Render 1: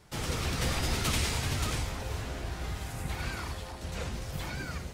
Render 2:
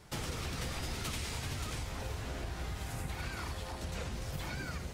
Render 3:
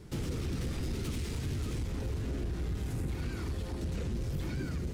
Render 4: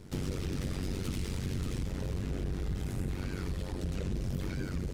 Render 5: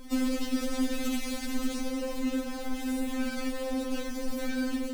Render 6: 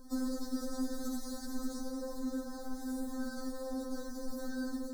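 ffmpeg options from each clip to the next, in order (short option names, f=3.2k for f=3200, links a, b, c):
-af "acompressor=threshold=-37dB:ratio=6,volume=1.5dB"
-af "asoftclip=type=tanh:threshold=-37dB,lowshelf=f=510:t=q:w=1.5:g=10,volume=-1.5dB"
-af "tremolo=f=94:d=0.857,volume=4dB"
-filter_complex "[0:a]asplit=2[a][b];[b]acrusher=bits=2:mode=log:mix=0:aa=0.000001,volume=-4.5dB[c];[a][c]amix=inputs=2:normalize=0,afftfilt=real='re*3.46*eq(mod(b,12),0)':imag='im*3.46*eq(mod(b,12),0)':win_size=2048:overlap=0.75,volume=5dB"
-af "asuperstop=centerf=2600:order=8:qfactor=1.1,volume=-7dB"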